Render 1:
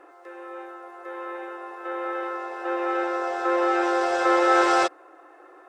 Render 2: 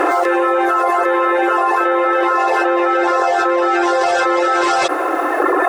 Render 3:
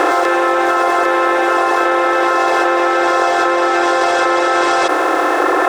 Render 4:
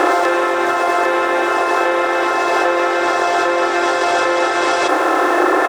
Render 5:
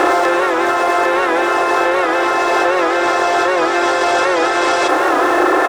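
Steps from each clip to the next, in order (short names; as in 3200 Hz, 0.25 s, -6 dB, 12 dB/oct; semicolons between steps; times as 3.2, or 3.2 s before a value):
reverb removal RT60 1.2 s; fast leveller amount 100%; gain +4 dB
per-bin compression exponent 0.4; gain -3 dB
doubler 31 ms -10.5 dB; on a send at -11 dB: reverb RT60 1.1 s, pre-delay 3 ms; on the sum: gain -1 dB
in parallel at -6 dB: soft clip -16.5 dBFS, distortion -10 dB; on the sum: record warp 78 rpm, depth 100 cents; gain -1 dB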